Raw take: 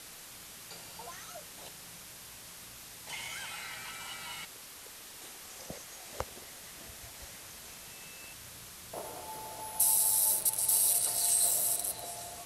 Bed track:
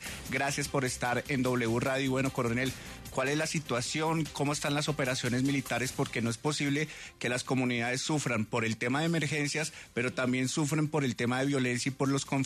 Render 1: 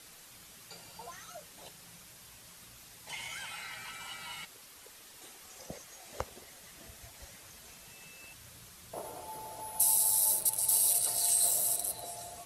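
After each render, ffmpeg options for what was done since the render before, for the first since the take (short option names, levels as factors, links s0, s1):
-af "afftdn=nr=6:nf=-49"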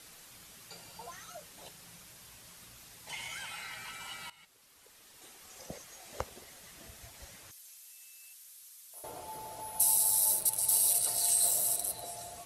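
-filter_complex "[0:a]asettb=1/sr,asplit=3[s0][s1][s2];[s0]atrim=end=7.514[s3];[s1]atrim=start=7.51:end=9.04,asetpts=PTS-STARTPTS,afade=t=in:d=0.004:c=qsin,afade=t=out:st=1.526:d=0.004:c=qsin,aderivative[s4];[s2]atrim=start=9.036[s5];[s3][s4]acrossfade=d=0.004:c1=hsin:c2=qsin[s6];[s6][s5]acrossfade=d=0.004:c1=qsin:c2=hsin,asplit=2[s7][s8];[s7]atrim=end=4.3,asetpts=PTS-STARTPTS,afade=t=out:st=4.296:d=0.004:c=hsin:silence=0.11885[s9];[s8]atrim=start=4.3,asetpts=PTS-STARTPTS,afade=t=in:d=1.35:silence=0.11885[s10];[s9][s10]concat=n=2:v=0:a=1"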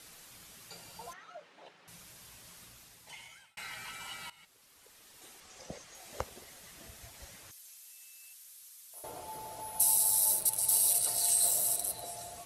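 -filter_complex "[0:a]asettb=1/sr,asplit=3[s0][s1][s2];[s0]atrim=end=1.134[s3];[s1]atrim=start=1.13:end=1.88,asetpts=PTS-STARTPTS,afade=t=in:d=0.004:c=qsin,afade=t=out:st=0.746:d=0.004:c=qsin,highpass=300,lowpass=2500[s4];[s2]atrim=start=1.876[s5];[s3][s4]acrossfade=d=0.004:c1=hsin:c2=qsin[s6];[s6][s5]acrossfade=d=0.004:c1=qsin:c2=hsin,asettb=1/sr,asplit=3[s7][s8][s9];[s7]atrim=end=5.404[s10];[s8]atrim=start=5.4:end=5.95,asetpts=PTS-STARTPTS,afade=t=in:d=0.004:c=qsin,afade=t=out:st=0.546:d=0.004:c=qsin,lowpass=7700[s11];[s9]atrim=start=5.946[s12];[s10][s11]acrossfade=d=0.004:c1=hsin:c2=qsin[s13];[s13][s12]acrossfade=d=0.004:c1=qsin:c2=hsin,asplit=2[s14][s15];[s14]atrim=end=3.57,asetpts=PTS-STARTPTS,afade=t=out:st=2.58:d=0.99[s16];[s15]atrim=start=3.57,asetpts=PTS-STARTPTS,afade=t=in:d=0.004:c=hsin[s17];[s16][s17]concat=n=2:v=0:a=1"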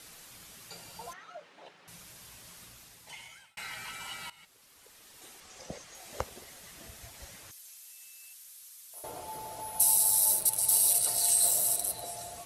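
-af "volume=1.33"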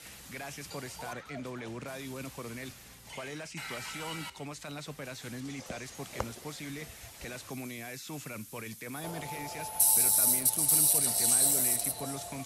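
-filter_complex "[1:a]volume=0.266[s0];[0:a][s0]amix=inputs=2:normalize=0"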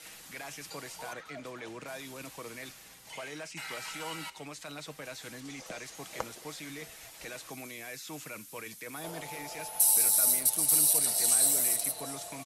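-af "equalizer=f=79:t=o:w=2.7:g=-12,aecho=1:1:6.3:0.32"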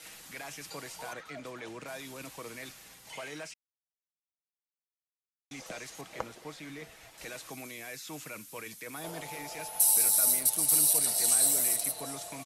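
-filter_complex "[0:a]asettb=1/sr,asplit=3[s0][s1][s2];[s0]atrim=end=6.014[s3];[s1]atrim=start=6.01:end=7.18,asetpts=PTS-STARTPTS,afade=t=in:d=0.004:c=qsin,afade=t=out:st=1.166:d=0.004:c=qsin,highshelf=f=4400:g=-10.5[s4];[s2]atrim=start=7.176[s5];[s3][s4]acrossfade=d=0.004:c1=hsin:c2=qsin[s6];[s6][s5]acrossfade=d=0.004:c1=qsin:c2=hsin,asplit=3[s7][s8][s9];[s7]atrim=end=3.54,asetpts=PTS-STARTPTS,afade=t=out:st=3.536:d=0.004:c=hsin[s10];[s8]atrim=start=3.54:end=5.51,asetpts=PTS-STARTPTS,volume=0[s11];[s9]atrim=start=5.51,asetpts=PTS-STARTPTS,afade=t=in:d=0.004:c=hsin[s12];[s10][s11][s12]concat=n=3:v=0:a=1"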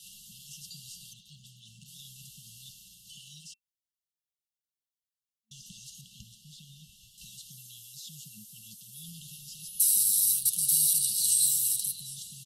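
-af "afftfilt=real='re*(1-between(b*sr/4096,220,2700))':imag='im*(1-between(b*sr/4096,220,2700))':win_size=4096:overlap=0.75,adynamicequalizer=threshold=0.00355:dfrequency=4100:dqfactor=2.1:tfrequency=4100:tqfactor=2.1:attack=5:release=100:ratio=0.375:range=1.5:mode=boostabove:tftype=bell"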